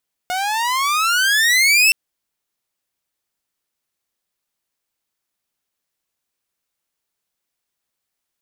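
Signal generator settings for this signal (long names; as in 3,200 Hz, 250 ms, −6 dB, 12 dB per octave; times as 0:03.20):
pitch glide with a swell saw, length 1.62 s, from 717 Hz, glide +23 semitones, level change +10 dB, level −7 dB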